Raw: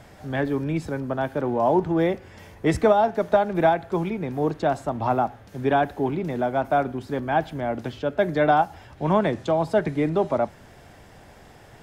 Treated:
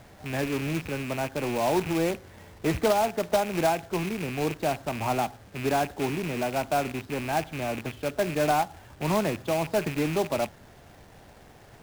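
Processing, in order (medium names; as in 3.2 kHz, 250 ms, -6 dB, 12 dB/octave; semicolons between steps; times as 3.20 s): rattle on loud lows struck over -34 dBFS, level -20 dBFS; distance through air 110 m; in parallel at -7.5 dB: saturation -25 dBFS, distortion -7 dB; on the sum: treble shelf 3.8 kHz -8 dB; companded quantiser 4-bit; trim -6 dB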